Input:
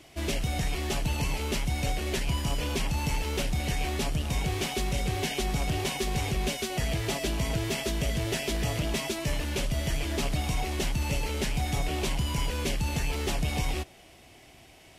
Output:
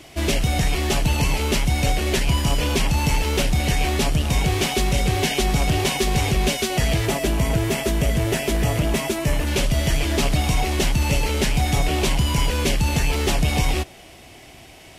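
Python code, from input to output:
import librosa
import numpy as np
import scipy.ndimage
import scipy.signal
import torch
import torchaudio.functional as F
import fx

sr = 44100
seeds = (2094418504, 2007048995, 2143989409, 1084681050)

y = fx.peak_eq(x, sr, hz=4300.0, db=-6.5, octaves=1.5, at=(7.06, 9.47))
y = y * 10.0 ** (9.0 / 20.0)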